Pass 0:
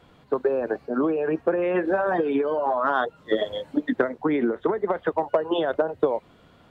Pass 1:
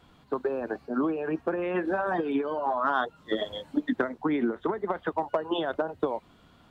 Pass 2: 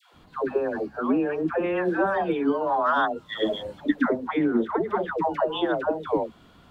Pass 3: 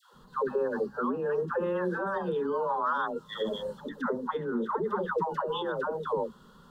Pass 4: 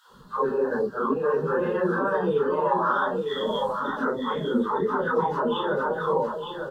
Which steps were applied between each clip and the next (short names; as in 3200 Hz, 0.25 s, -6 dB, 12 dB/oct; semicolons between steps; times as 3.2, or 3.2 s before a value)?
graphic EQ 125/500/2000 Hz -4/-8/-4 dB
dispersion lows, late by 0.142 s, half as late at 670 Hz; gain +4 dB
limiter -20.5 dBFS, peak gain reduction 10 dB; fixed phaser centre 460 Hz, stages 8; gain +1.5 dB
phase scrambler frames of 0.1 s; on a send: echo 0.907 s -6 dB; on the sum: gain +5 dB